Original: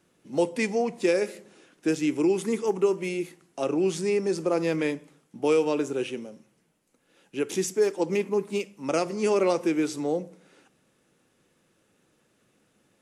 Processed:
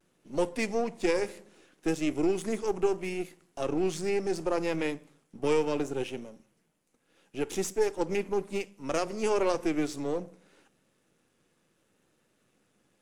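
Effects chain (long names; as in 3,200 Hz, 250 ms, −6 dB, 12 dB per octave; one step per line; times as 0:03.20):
gain on one half-wave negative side −7 dB
pitch vibrato 0.68 Hz 37 cents
level −1.5 dB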